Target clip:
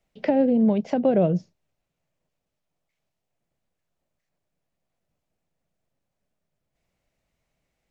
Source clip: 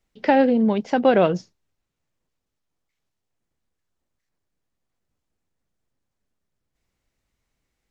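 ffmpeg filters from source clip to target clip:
ffmpeg -i in.wav -filter_complex "[0:a]equalizer=frequency=160:width_type=o:width=0.67:gain=7,equalizer=frequency=630:width_type=o:width=0.67:gain=10,equalizer=frequency=2500:width_type=o:width=0.67:gain=4,acrossover=split=420[link_01][link_02];[link_02]acompressor=threshold=-28dB:ratio=5[link_03];[link_01][link_03]amix=inputs=2:normalize=0,volume=-2.5dB" out.wav

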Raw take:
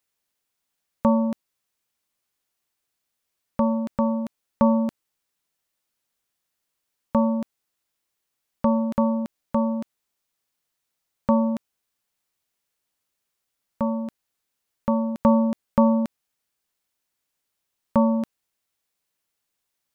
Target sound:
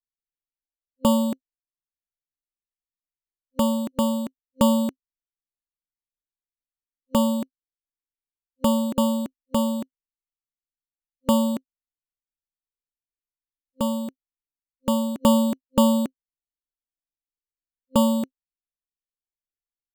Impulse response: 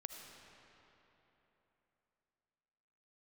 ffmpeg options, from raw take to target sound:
-af "anlmdn=0.0251,acrusher=samples=11:mix=1:aa=0.000001,superequalizer=6b=2.24:7b=2:13b=0.708:14b=0.398"

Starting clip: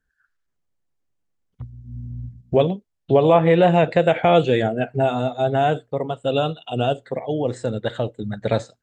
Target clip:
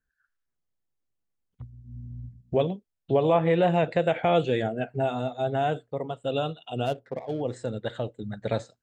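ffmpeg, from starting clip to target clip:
ffmpeg -i in.wav -filter_complex "[0:a]asplit=3[link_01][link_02][link_03];[link_01]afade=type=out:start_time=6.85:duration=0.02[link_04];[link_02]adynamicsmooth=sensitivity=7:basefreq=1200,afade=type=in:start_time=6.85:duration=0.02,afade=type=out:start_time=7.4:duration=0.02[link_05];[link_03]afade=type=in:start_time=7.4:duration=0.02[link_06];[link_04][link_05][link_06]amix=inputs=3:normalize=0,volume=-7dB" out.wav

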